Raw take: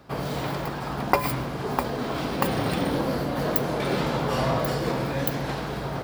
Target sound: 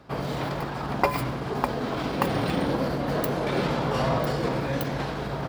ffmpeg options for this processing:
ffmpeg -i in.wav -af "highshelf=frequency=8900:gain=-9.5,atempo=1.1" out.wav

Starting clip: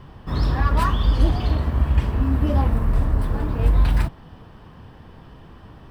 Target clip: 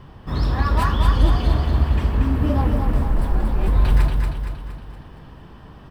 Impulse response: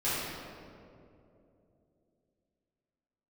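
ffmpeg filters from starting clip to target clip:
-filter_complex "[0:a]asettb=1/sr,asplit=3[link_01][link_02][link_03];[link_01]atrim=end=3.044[link_04];[link_02]atrim=start=3.04:end=3.68,asetpts=PTS-STARTPTS,afade=type=in:duration=0.004:curve=qsin,afade=type=out:start_time=0.636:duration=0.004:curve=qsin,afreqshift=-83[link_05];[link_03]atrim=start=3.676[link_06];[link_04][link_05]acrossfade=duration=0.004:curve1=hsin:curve2=qsin[link_07];[link_07][link_06]acrossfade=duration=0.004:curve1=qsin:curve2=hsin,aecho=1:1:233|466|699|932|1165|1398:0.596|0.298|0.149|0.0745|0.0372|0.0186"

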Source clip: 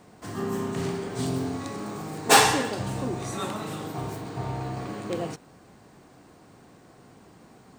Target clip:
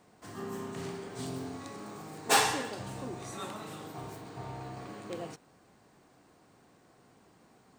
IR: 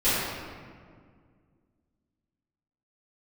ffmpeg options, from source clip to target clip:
-af "lowshelf=frequency=330:gain=-4.5,volume=-7.5dB"

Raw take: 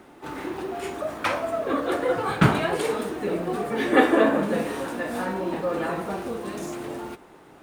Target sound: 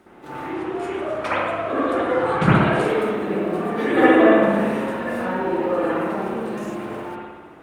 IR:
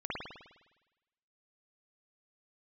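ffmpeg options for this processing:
-filter_complex "[0:a]asettb=1/sr,asplit=3[link_01][link_02][link_03];[link_01]atrim=end=0.534[link_04];[link_02]atrim=start=0.53:end=2.88,asetpts=PTS-STARTPTS,afade=type=in:duration=0.004:curve=qsin,afade=type=out:start_time=2.346:duration=0.004:curve=qsin,lowpass=frequency=11000:width=0.5412,lowpass=frequency=11000:width=1.3066[link_05];[link_03]atrim=start=2.876[link_06];[link_04][link_05]acrossfade=duration=0.004:curve1=hsin:curve2=qsin[link_07];[link_07][link_06]acrossfade=duration=0.004:curve1=qsin:curve2=hsin[link_08];[1:a]atrim=start_sample=2205,asetrate=37926,aresample=44100[link_09];[link_08][link_09]afir=irnorm=-1:irlink=0,volume=-1.5dB"

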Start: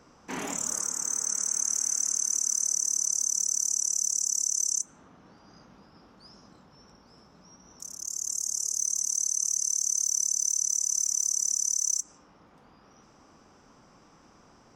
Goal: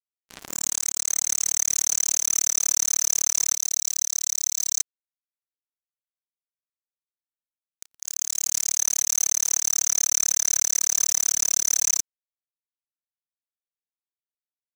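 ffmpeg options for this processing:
ffmpeg -i in.wav -af "asetnsamples=nb_out_samples=441:pad=0,asendcmd='3.54 highshelf g -6.5;4.8 highshelf g 6.5',highshelf=frequency=9800:gain=5.5,acrusher=bits=3:mix=0:aa=0.5,volume=3dB" out.wav

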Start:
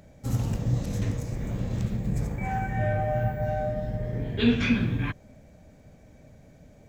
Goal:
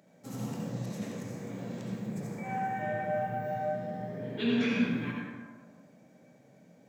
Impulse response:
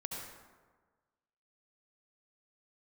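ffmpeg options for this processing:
-filter_complex "[0:a]highpass=frequency=170:width=0.5412,highpass=frequency=170:width=1.3066[link_01];[1:a]atrim=start_sample=2205[link_02];[link_01][link_02]afir=irnorm=-1:irlink=0,volume=-4dB"

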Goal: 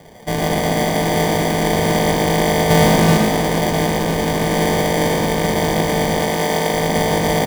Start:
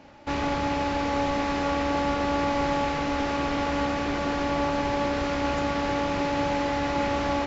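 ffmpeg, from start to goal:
ffmpeg -i in.wav -filter_complex "[0:a]highpass=frequency=210:width_type=q:width=0.5412,highpass=frequency=210:width_type=q:width=1.307,lowpass=frequency=3600:width_type=q:width=0.5176,lowpass=frequency=3600:width_type=q:width=0.7071,lowpass=frequency=3600:width_type=q:width=1.932,afreqshift=-120,asettb=1/sr,asplit=3[link_01][link_02][link_03];[link_01]atrim=end=2.704[link_04];[link_02]atrim=start=2.7:end=3.18,asetpts=PTS-STARTPTS,afade=type=in:duration=0.004:curve=qsin,afade=type=out:start_time=0.476:duration=0.004:curve=qsin,lowshelf=frequency=450:gain=9.5[link_05];[link_03]atrim=start=3.176[link_06];[link_04][link_05]acrossfade=duration=0.004:curve1=hsin:curve2=qsin[link_07];[link_07][link_06]acrossfade=duration=0.004:curve1=qsin:curve2=hsin,acrusher=samples=33:mix=1:aa=0.000001,asettb=1/sr,asplit=3[link_08][link_09][link_10];[link_08]atrim=end=6.194[link_11];[link_09]atrim=start=6.19:end=6.74,asetpts=PTS-STARTPTS,afade=type=in:duration=0.004:curve=qsin,afade=type=out:start_time=0.546:duration=0.004:curve=qsin,lowshelf=frequency=140:gain=-10.5[link_12];[link_10]atrim=start=6.736[link_13];[link_11][link_12]acrossfade=duration=0.004:curve1=hsin:curve2=qsin[link_14];[link_14][link_13]acrossfade=duration=0.004:curve1=qsin:curve2=hsin,asplit=6[link_15][link_16][link_17][link_18][link_19][link_20];[link_16]adelay=116,afreqshift=50,volume=-4.5dB[link_21];[link_17]adelay=232,afreqshift=100,volume=-12.2dB[link_22];[link_18]adelay=348,afreqshift=150,volume=-20dB[link_23];[link_19]adelay=464,afreqshift=200,volume=-27.7dB[link_24];[link_20]adelay=580,afreqshift=250,volume=-35.5dB[link_25];[link_15][link_21][link_22][link_23][link_24][link_25]amix=inputs=6:normalize=0,volume=8dB" out.wav

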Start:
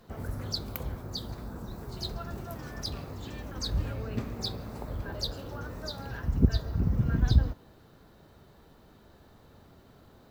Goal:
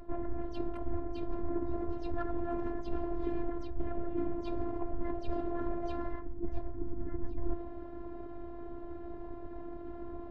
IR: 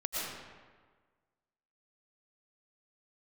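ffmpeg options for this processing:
-filter_complex "[0:a]asplit=3[link_01][link_02][link_03];[link_02]asetrate=29433,aresample=44100,atempo=1.49831,volume=-5dB[link_04];[link_03]asetrate=55563,aresample=44100,atempo=0.793701,volume=-2dB[link_05];[link_01][link_04][link_05]amix=inputs=3:normalize=0,areverse,acompressor=threshold=-40dB:ratio=16,areverse,bandreject=frequency=60.97:width_type=h:width=4,bandreject=frequency=121.94:width_type=h:width=4,bandreject=frequency=182.91:width_type=h:width=4,bandreject=frequency=243.88:width_type=h:width=4,bandreject=frequency=304.85:width_type=h:width=4,bandreject=frequency=365.82:width_type=h:width=4,bandreject=frequency=426.79:width_type=h:width=4,bandreject=frequency=487.76:width_type=h:width=4,bandreject=frequency=548.73:width_type=h:width=4,bandreject=frequency=609.7:width_type=h:width=4,adynamicsmooth=sensitivity=1.5:basefreq=740,afftfilt=real='hypot(re,im)*cos(PI*b)':imag='0':win_size=512:overlap=0.75,volume=17.5dB"

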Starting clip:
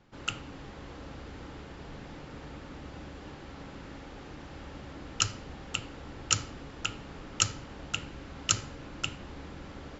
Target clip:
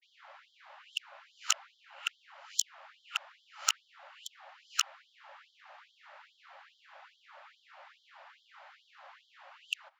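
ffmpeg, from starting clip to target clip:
ffmpeg -i in.wav -af "areverse,adynamicsmooth=sensitivity=1.5:basefreq=3000,afftfilt=real='re*gte(b*sr/1024,530*pow(3100/530,0.5+0.5*sin(2*PI*2.4*pts/sr)))':imag='im*gte(b*sr/1024,530*pow(3100/530,0.5+0.5*sin(2*PI*2.4*pts/sr)))':win_size=1024:overlap=0.75" out.wav

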